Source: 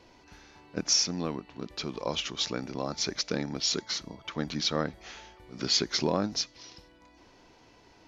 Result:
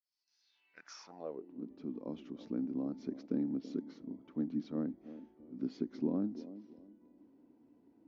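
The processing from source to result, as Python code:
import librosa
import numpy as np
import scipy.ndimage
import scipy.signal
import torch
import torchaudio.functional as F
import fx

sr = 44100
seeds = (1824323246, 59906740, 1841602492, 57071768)

p1 = fx.fade_in_head(x, sr, length_s=2.66)
p2 = fx.rider(p1, sr, range_db=5, speed_s=2.0)
p3 = p1 + (p2 * librosa.db_to_amplitude(-2.0))
p4 = fx.echo_wet_bandpass(p3, sr, ms=331, feedback_pct=31, hz=410.0, wet_db=-13.0)
p5 = fx.filter_sweep_bandpass(p4, sr, from_hz=5000.0, to_hz=260.0, start_s=0.4, end_s=1.58, q=4.7)
y = p5 * librosa.db_to_amplitude(-1.0)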